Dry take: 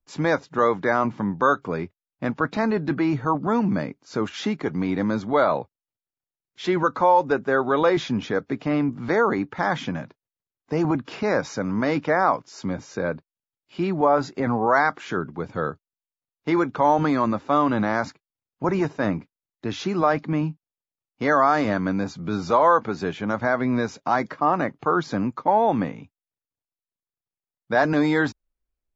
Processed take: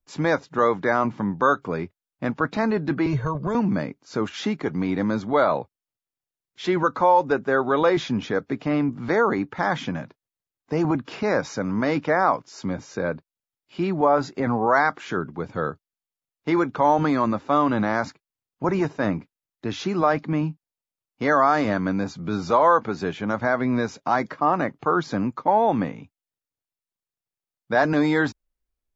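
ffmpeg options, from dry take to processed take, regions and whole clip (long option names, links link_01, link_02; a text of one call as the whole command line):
ffmpeg -i in.wav -filter_complex "[0:a]asettb=1/sr,asplit=3[link_01][link_02][link_03];[link_01]atrim=end=3.064[link_04];[link_02]atrim=start=3.06:end=3.55,asetpts=PTS-STARTPTS,afade=type=in:duration=0.004:curve=qsin,afade=type=out:start_time=0.486:duration=0.004:curve=qsin,lowshelf=frequency=80:gain=11.5,aecho=1:1:1.9:0.76,atrim=end_sample=21609,acrossover=split=290|3000[link_05][link_06][link_07];[link_06]acompressor=threshold=-26dB:ratio=4:attack=3.2:release=140:knee=2.83:detection=peak[link_08];[link_05][link_08][link_07]amix=inputs=3:normalize=0[link_09];[link_03]atrim=start=3.546[link_10];[link_04][link_09]acrossfade=duration=0.004:curve1=hsin:curve2=qsin[link_11];[link_11][link_10]acrossfade=duration=0.004:curve1=qsin:curve2=hsin" out.wav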